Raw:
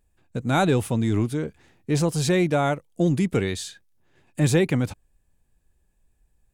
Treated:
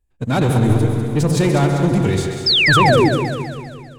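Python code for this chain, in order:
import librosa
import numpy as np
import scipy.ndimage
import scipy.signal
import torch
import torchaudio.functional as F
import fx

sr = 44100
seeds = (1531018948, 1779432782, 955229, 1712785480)

p1 = fx.reverse_delay_fb(x, sr, ms=110, feedback_pct=79, wet_db=-11)
p2 = fx.low_shelf(p1, sr, hz=86.0, db=7.5)
p3 = fx.leveller(p2, sr, passes=2)
p4 = fx.stretch_vocoder(p3, sr, factor=0.61)
p5 = fx.echo_filtered(p4, sr, ms=84, feedback_pct=78, hz=2000.0, wet_db=-10.0)
p6 = fx.spec_paint(p5, sr, seeds[0], shape='fall', start_s=2.46, length_s=0.63, low_hz=280.0, high_hz=5400.0, level_db=-12.0)
p7 = p6 + fx.echo_split(p6, sr, split_hz=370.0, low_ms=91, high_ms=196, feedback_pct=52, wet_db=-8, dry=0)
y = p7 * 10.0 ** (-2.0 / 20.0)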